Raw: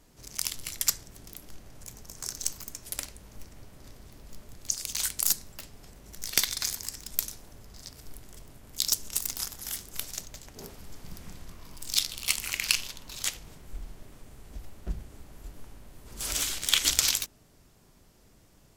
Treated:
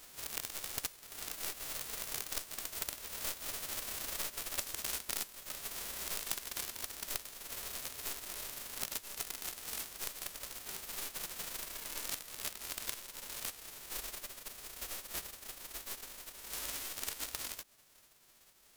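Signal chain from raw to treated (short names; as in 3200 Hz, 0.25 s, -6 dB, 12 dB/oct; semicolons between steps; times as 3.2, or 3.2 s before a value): spectral whitening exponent 0.1; Doppler pass-by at 3.89, 14 m/s, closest 20 m; compressor 5:1, threshold -52 dBFS, peak gain reduction 25.5 dB; gain +14 dB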